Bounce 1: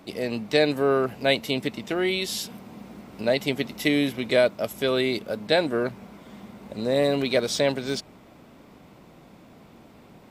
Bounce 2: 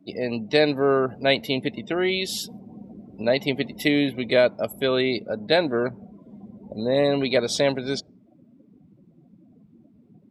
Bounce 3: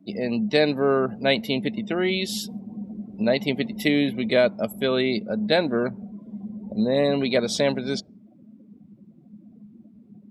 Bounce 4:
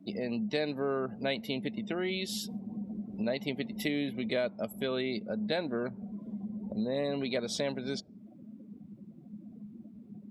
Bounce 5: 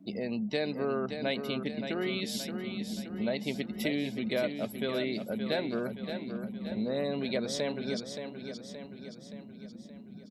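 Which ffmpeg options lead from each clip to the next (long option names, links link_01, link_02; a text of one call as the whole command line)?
ffmpeg -i in.wav -af "afftdn=noise_reduction=28:noise_floor=-40,volume=1.5dB" out.wav
ffmpeg -i in.wav -af "equalizer=frequency=210:width=5.9:gain=13,volume=-1dB" out.wav
ffmpeg -i in.wav -af "acompressor=threshold=-38dB:ratio=2" out.wav
ffmpeg -i in.wav -af "aecho=1:1:573|1146|1719|2292|2865|3438:0.398|0.211|0.112|0.0593|0.0314|0.0166" out.wav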